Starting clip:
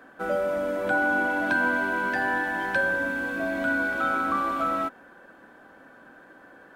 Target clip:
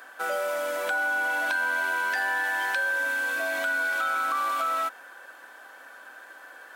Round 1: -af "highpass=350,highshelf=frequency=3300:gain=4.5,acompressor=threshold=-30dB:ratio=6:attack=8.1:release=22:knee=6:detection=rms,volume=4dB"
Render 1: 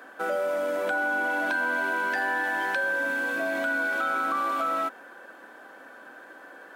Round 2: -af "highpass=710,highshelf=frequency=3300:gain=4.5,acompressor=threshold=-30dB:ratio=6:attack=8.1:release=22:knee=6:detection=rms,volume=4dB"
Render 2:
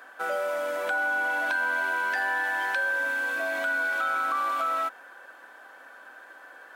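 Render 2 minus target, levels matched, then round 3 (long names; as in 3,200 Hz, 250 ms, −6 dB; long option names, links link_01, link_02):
8,000 Hz band −5.5 dB
-af "highpass=710,highshelf=frequency=3300:gain=12.5,acompressor=threshold=-30dB:ratio=6:attack=8.1:release=22:knee=6:detection=rms,volume=4dB"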